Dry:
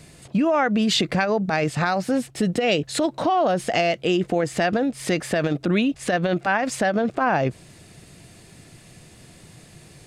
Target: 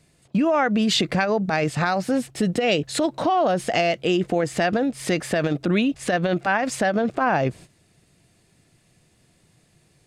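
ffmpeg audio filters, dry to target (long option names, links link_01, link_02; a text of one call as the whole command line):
ffmpeg -i in.wav -af "agate=range=-13dB:threshold=-40dB:ratio=16:detection=peak" out.wav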